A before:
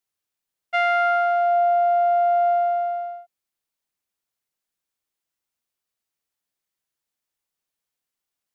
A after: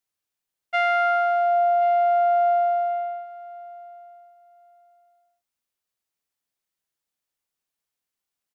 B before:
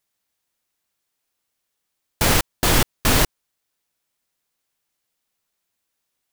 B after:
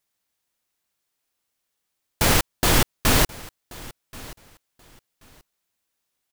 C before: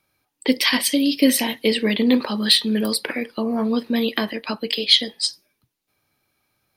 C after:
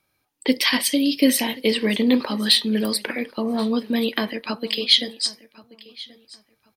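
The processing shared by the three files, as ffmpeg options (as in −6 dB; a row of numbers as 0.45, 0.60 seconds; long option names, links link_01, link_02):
-af "aecho=1:1:1081|2162:0.0891|0.0187,volume=-1dB"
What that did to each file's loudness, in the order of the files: −1.0, −1.0, −1.0 LU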